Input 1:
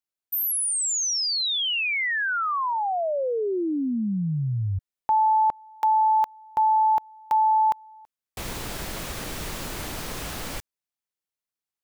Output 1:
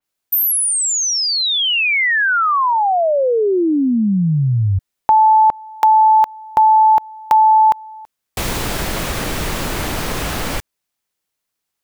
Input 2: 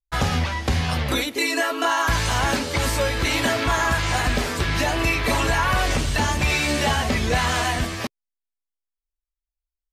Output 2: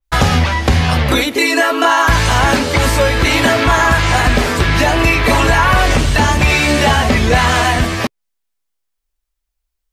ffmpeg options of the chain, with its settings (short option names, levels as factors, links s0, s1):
-filter_complex "[0:a]asplit=2[s0][s1];[s1]acompressor=threshold=0.02:ratio=6:attack=31:release=71:detection=peak,volume=0.75[s2];[s0][s2]amix=inputs=2:normalize=0,adynamicequalizer=threshold=0.0126:dfrequency=3300:dqfactor=0.7:tfrequency=3300:tqfactor=0.7:attack=5:release=100:ratio=0.375:range=2:mode=cutabove:tftype=highshelf,volume=2.51"